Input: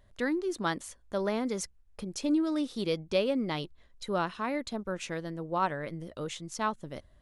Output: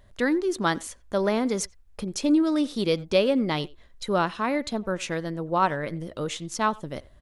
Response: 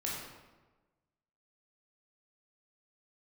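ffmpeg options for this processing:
-filter_complex "[0:a]asplit=2[a][b];[b]adelay=90,highpass=300,lowpass=3.4k,asoftclip=type=hard:threshold=-25.5dB,volume=-21dB[c];[a][c]amix=inputs=2:normalize=0,volume=6.5dB"

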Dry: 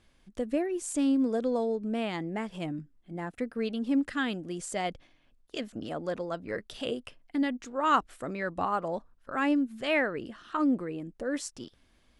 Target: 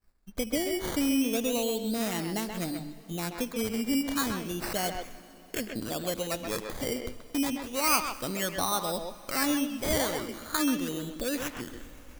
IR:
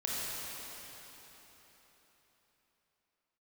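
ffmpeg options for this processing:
-filter_complex "[0:a]areverse,acompressor=mode=upward:threshold=-45dB:ratio=2.5,areverse,acrusher=samples=13:mix=1:aa=0.000001:lfo=1:lforange=7.8:lforate=0.32,asplit=2[a][b];[b]adelay=130,highpass=300,lowpass=3.4k,asoftclip=type=hard:threshold=-22dB,volume=-6dB[c];[a][c]amix=inputs=2:normalize=0,acompressor=threshold=-44dB:ratio=1.5,highshelf=f=4.2k:g=10.5,agate=range=-33dB:threshold=-49dB:ratio=3:detection=peak,lowshelf=f=100:g=10.5,bandreject=f=50:t=h:w=6,bandreject=f=100:t=h:w=6,bandreject=f=150:t=h:w=6,asplit=2[d][e];[1:a]atrim=start_sample=2205,adelay=74[f];[e][f]afir=irnorm=-1:irlink=0,volume=-22dB[g];[d][g]amix=inputs=2:normalize=0,volume=4.5dB"

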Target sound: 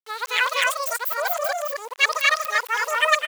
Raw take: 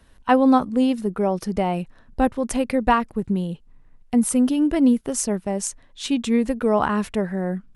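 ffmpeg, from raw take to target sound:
-af "areverse,asetrate=104517,aresample=44100,aeval=exprs='val(0)*gte(abs(val(0)),0.015)':c=same,highpass=1.3k,aecho=1:1:207|239.1:0.398|0.891,volume=2dB"

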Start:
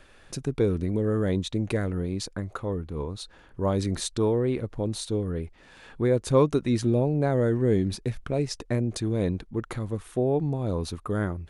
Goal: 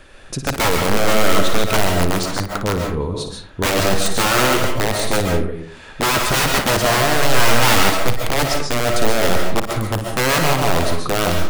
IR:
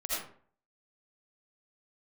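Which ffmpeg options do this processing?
-filter_complex "[0:a]aeval=exprs='(mod(11.2*val(0)+1,2)-1)/11.2':c=same,asettb=1/sr,asplit=3[a][b][c];[a]atrim=end=7.614[d];[b]atrim=start=7.61:end=8.06,asetpts=PTS-STARTPTS,afade=t=in:d=0.004:c=qsin,afade=t=out:st=0.446:d=0.004:c=qsin,acrusher=bits=5:dc=4:mix=0:aa=0.000001[e];[c]atrim=start=8.056[f];[d][e]acrossfade=d=0.004:c1=hsin:c2=qsin[g];[g][f]acrossfade=d=0.004:c1=qsin:c2=hsin,asplit=2[h][i];[1:a]atrim=start_sample=2205,adelay=57[j];[i][j]afir=irnorm=-1:irlink=0,volume=-6.5dB[k];[h][k]amix=inputs=2:normalize=0,volume=8.5dB"

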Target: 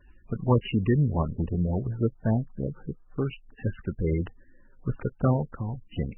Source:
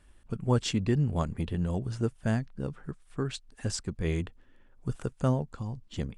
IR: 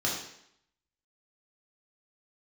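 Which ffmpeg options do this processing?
-filter_complex "[0:a]asplit=3[a][b][c];[a]afade=t=out:st=1.18:d=0.02[d];[b]lowpass=1.1k,afade=t=in:st=1.18:d=0.02,afade=t=out:st=3.25:d=0.02[e];[c]afade=t=in:st=3.25:d=0.02[f];[d][e][f]amix=inputs=3:normalize=0,volume=4dB" -ar 24000 -c:a libmp3lame -b:a 8k

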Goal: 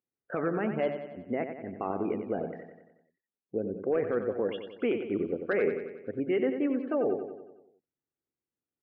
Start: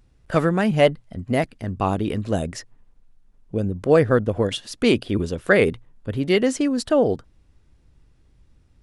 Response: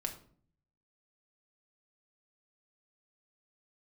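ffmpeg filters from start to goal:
-af "highpass=290,equalizer=f=390:t=q:w=4:g=3,equalizer=f=1k:t=q:w=4:g=-5,equalizer=f=1.8k:t=q:w=4:g=-3,lowpass=f=2.3k:w=0.5412,lowpass=f=2.3k:w=1.3066,bandreject=f=620:w=18,asoftclip=type=hard:threshold=-8dB,afftdn=nr=22:nf=-39,alimiter=limit=-16dB:level=0:latency=1:release=34,aecho=1:1:92|184|276|368|460|552|644:0.398|0.219|0.12|0.0662|0.0364|0.02|0.011,volume=-4.5dB"

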